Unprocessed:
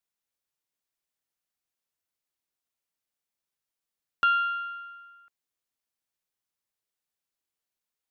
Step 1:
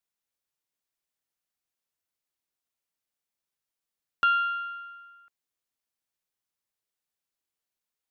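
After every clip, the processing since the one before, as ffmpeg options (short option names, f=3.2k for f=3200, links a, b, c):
-af anull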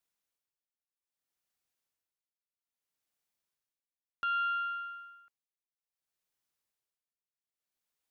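-af "tremolo=f=0.62:d=0.92,volume=1.5dB"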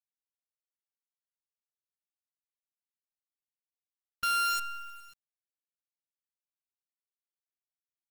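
-af "afftfilt=real='re*gte(hypot(re,im),0.0224)':imag='im*gte(hypot(re,im),0.0224)':win_size=1024:overlap=0.75,acrusher=bits=6:dc=4:mix=0:aa=0.000001,volume=1.5dB"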